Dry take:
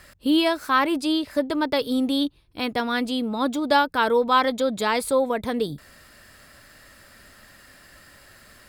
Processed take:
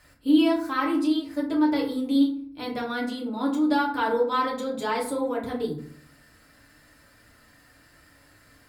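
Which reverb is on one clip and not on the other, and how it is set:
feedback delay network reverb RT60 0.55 s, low-frequency decay 1.5×, high-frequency decay 0.5×, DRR −3.5 dB
level −11 dB

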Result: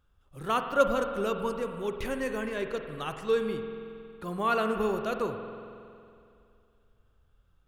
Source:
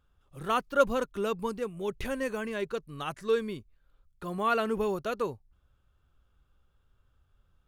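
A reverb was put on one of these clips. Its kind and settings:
spring reverb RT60 2.5 s, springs 46 ms, chirp 75 ms, DRR 6 dB

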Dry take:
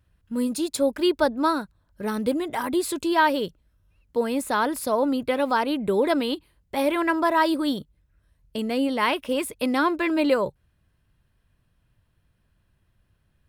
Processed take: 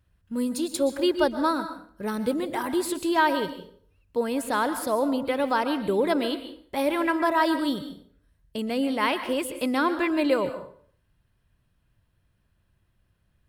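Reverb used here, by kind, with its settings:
dense smooth reverb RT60 0.53 s, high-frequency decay 0.8×, pre-delay 110 ms, DRR 10 dB
level −2 dB

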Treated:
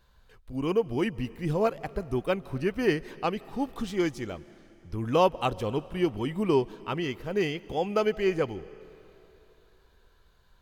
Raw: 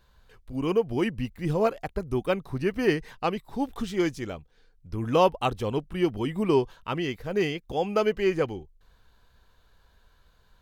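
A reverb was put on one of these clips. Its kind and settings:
comb and all-pass reverb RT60 3.1 s, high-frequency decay 1×, pre-delay 115 ms, DRR 19.5 dB
level −1.5 dB

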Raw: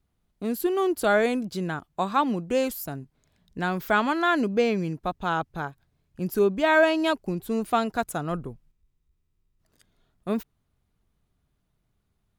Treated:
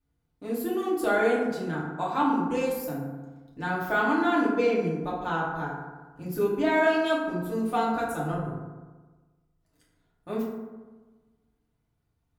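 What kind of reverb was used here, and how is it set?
feedback delay network reverb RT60 1.3 s, low-frequency decay 1.1×, high-frequency decay 0.4×, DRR −7 dB
level −10 dB

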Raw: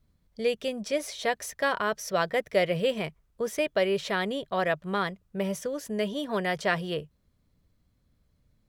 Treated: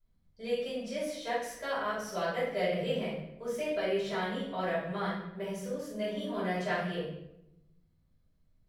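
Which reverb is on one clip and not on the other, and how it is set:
rectangular room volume 270 cubic metres, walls mixed, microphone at 5.1 metres
level −19.5 dB

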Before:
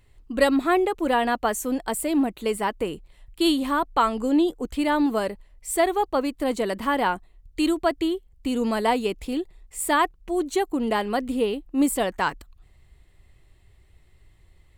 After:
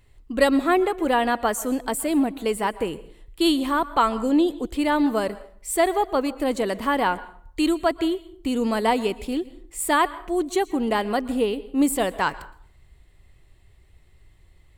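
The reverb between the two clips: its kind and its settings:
dense smooth reverb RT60 0.54 s, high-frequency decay 0.7×, pre-delay 105 ms, DRR 17 dB
level +1 dB

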